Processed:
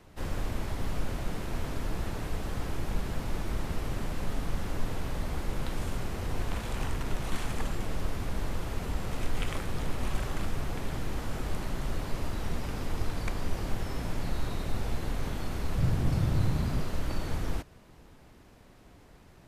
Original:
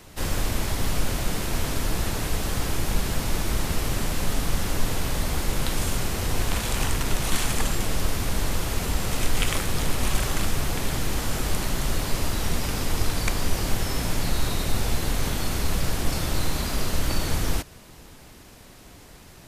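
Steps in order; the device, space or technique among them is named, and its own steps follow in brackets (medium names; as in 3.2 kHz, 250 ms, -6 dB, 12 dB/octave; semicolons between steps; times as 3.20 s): through cloth (treble shelf 3.1 kHz -12 dB); 15.78–16.81 s: peaking EQ 120 Hz +13 dB 1.5 oct; trim -6.5 dB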